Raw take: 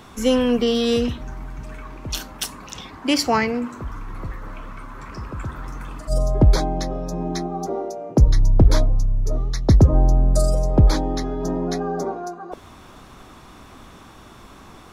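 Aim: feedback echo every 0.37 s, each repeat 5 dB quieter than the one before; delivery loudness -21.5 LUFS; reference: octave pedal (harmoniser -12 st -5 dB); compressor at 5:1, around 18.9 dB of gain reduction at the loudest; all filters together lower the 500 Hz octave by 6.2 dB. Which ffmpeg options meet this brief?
-filter_complex "[0:a]equalizer=f=500:t=o:g=-7.5,acompressor=threshold=-30dB:ratio=5,aecho=1:1:370|740|1110|1480|1850|2220|2590:0.562|0.315|0.176|0.0988|0.0553|0.031|0.0173,asplit=2[a][b];[b]asetrate=22050,aresample=44100,atempo=2,volume=-5dB[c];[a][c]amix=inputs=2:normalize=0,volume=11dB"

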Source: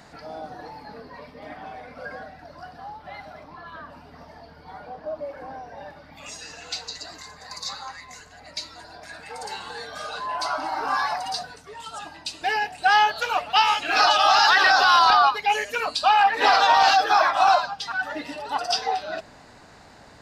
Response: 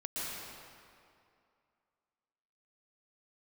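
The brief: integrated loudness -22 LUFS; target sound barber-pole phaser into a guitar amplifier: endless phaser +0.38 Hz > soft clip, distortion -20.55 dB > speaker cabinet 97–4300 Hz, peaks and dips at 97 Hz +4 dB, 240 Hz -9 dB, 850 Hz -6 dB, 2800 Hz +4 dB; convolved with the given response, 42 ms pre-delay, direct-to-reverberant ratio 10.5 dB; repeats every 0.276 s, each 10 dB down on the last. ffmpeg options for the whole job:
-filter_complex "[0:a]aecho=1:1:276|552|828|1104:0.316|0.101|0.0324|0.0104,asplit=2[a][b];[1:a]atrim=start_sample=2205,adelay=42[c];[b][c]afir=irnorm=-1:irlink=0,volume=-14dB[d];[a][d]amix=inputs=2:normalize=0,asplit=2[e][f];[f]afreqshift=0.38[g];[e][g]amix=inputs=2:normalize=1,asoftclip=threshold=-10.5dB,highpass=97,equalizer=f=97:t=q:w=4:g=4,equalizer=f=240:t=q:w=4:g=-9,equalizer=f=850:t=q:w=4:g=-6,equalizer=f=2.8k:t=q:w=4:g=4,lowpass=f=4.3k:w=0.5412,lowpass=f=4.3k:w=1.3066,volume=2dB"

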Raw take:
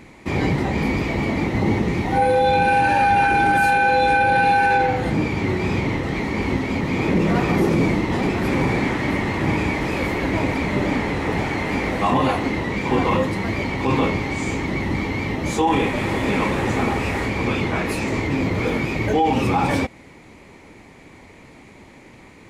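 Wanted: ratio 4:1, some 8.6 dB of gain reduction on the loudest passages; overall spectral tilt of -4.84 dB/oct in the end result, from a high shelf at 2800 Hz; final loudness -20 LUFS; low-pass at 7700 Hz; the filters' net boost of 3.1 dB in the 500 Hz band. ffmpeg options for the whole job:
-af "lowpass=7.7k,equalizer=f=500:t=o:g=3.5,highshelf=f=2.8k:g=3.5,acompressor=threshold=-22dB:ratio=4,volume=5dB"

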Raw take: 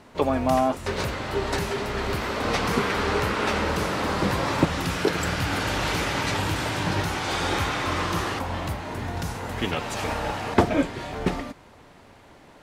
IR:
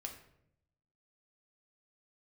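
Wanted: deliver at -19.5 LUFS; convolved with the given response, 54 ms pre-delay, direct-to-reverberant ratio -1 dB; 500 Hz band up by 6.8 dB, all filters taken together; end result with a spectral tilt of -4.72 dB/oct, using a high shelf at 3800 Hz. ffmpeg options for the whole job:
-filter_complex "[0:a]equalizer=f=500:t=o:g=8.5,highshelf=f=3.8k:g=5,asplit=2[a][b];[1:a]atrim=start_sample=2205,adelay=54[c];[b][c]afir=irnorm=-1:irlink=0,volume=3.5dB[d];[a][d]amix=inputs=2:normalize=0,volume=-1dB"

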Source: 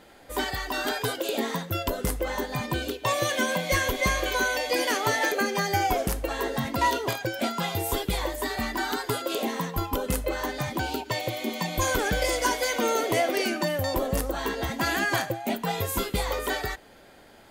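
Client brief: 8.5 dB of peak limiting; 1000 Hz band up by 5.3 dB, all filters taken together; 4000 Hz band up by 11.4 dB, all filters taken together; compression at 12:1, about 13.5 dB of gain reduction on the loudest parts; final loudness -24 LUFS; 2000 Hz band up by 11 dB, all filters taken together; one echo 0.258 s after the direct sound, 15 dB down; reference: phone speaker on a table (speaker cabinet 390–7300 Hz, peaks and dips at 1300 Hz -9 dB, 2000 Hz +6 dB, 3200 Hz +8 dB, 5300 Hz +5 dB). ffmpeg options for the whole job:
-af "equalizer=f=1k:t=o:g=6.5,equalizer=f=2k:t=o:g=7.5,equalizer=f=4k:t=o:g=4,acompressor=threshold=-26dB:ratio=12,alimiter=limit=-21.5dB:level=0:latency=1,highpass=f=390:w=0.5412,highpass=f=390:w=1.3066,equalizer=f=1.3k:t=q:w=4:g=-9,equalizer=f=2k:t=q:w=4:g=6,equalizer=f=3.2k:t=q:w=4:g=8,equalizer=f=5.3k:t=q:w=4:g=5,lowpass=f=7.3k:w=0.5412,lowpass=f=7.3k:w=1.3066,aecho=1:1:258:0.178,volume=5dB"

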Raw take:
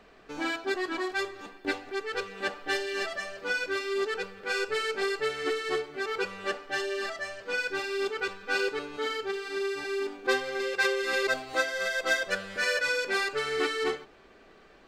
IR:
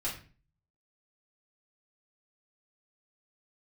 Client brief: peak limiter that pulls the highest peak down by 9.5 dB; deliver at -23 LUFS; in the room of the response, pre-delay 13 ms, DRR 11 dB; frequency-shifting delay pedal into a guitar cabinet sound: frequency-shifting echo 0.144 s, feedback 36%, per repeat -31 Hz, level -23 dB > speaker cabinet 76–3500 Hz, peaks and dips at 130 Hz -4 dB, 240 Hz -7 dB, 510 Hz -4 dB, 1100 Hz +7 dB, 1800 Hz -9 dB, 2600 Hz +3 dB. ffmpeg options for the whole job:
-filter_complex "[0:a]alimiter=limit=-20dB:level=0:latency=1,asplit=2[a][b];[1:a]atrim=start_sample=2205,adelay=13[c];[b][c]afir=irnorm=-1:irlink=0,volume=-15dB[d];[a][d]amix=inputs=2:normalize=0,asplit=3[e][f][g];[f]adelay=144,afreqshift=-31,volume=-23dB[h];[g]adelay=288,afreqshift=-62,volume=-31.9dB[i];[e][h][i]amix=inputs=3:normalize=0,highpass=76,equalizer=f=130:t=q:w=4:g=-4,equalizer=f=240:t=q:w=4:g=-7,equalizer=f=510:t=q:w=4:g=-4,equalizer=f=1.1k:t=q:w=4:g=7,equalizer=f=1.8k:t=q:w=4:g=-9,equalizer=f=2.6k:t=q:w=4:g=3,lowpass=f=3.5k:w=0.5412,lowpass=f=3.5k:w=1.3066,volume=10dB"

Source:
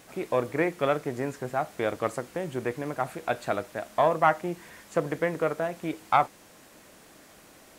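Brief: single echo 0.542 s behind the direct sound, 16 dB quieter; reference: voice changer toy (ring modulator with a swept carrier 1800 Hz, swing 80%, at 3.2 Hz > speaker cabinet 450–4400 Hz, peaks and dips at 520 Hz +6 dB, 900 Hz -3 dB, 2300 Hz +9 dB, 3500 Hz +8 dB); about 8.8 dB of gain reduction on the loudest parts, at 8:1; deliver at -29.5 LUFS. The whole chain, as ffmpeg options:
-af "acompressor=threshold=-25dB:ratio=8,aecho=1:1:542:0.158,aeval=exprs='val(0)*sin(2*PI*1800*n/s+1800*0.8/3.2*sin(2*PI*3.2*n/s))':c=same,highpass=450,equalizer=f=520:t=q:w=4:g=6,equalizer=f=900:t=q:w=4:g=-3,equalizer=f=2.3k:t=q:w=4:g=9,equalizer=f=3.5k:t=q:w=4:g=8,lowpass=f=4.4k:w=0.5412,lowpass=f=4.4k:w=1.3066,volume=-1dB"

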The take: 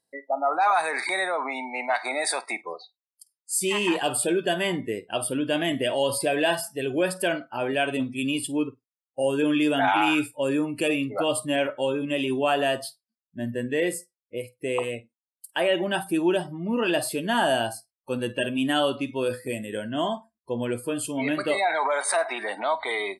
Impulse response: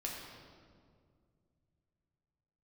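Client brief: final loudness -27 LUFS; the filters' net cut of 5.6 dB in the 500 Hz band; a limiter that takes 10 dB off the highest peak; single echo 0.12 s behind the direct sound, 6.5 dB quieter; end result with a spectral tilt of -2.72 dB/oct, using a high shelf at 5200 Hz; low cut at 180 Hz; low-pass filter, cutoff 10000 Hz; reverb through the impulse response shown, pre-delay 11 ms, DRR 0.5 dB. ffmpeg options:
-filter_complex "[0:a]highpass=180,lowpass=10k,equalizer=f=500:t=o:g=-7.5,highshelf=f=5.2k:g=8,alimiter=limit=-19dB:level=0:latency=1,aecho=1:1:120:0.473,asplit=2[a][b];[1:a]atrim=start_sample=2205,adelay=11[c];[b][c]afir=irnorm=-1:irlink=0,volume=-1.5dB[d];[a][d]amix=inputs=2:normalize=0,volume=-1dB"

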